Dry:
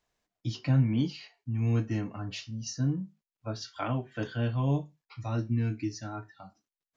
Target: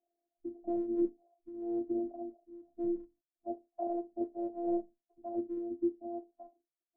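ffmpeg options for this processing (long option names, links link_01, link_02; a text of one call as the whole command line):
ffmpeg -i in.wav -af "afftfilt=real='re*between(b*sr/4096,140,820)':imag='im*between(b*sr/4096,140,820)':win_size=4096:overlap=0.75,afftfilt=real='hypot(re,im)*cos(PI*b)':imag='0':win_size=512:overlap=0.75,volume=3dB" out.wav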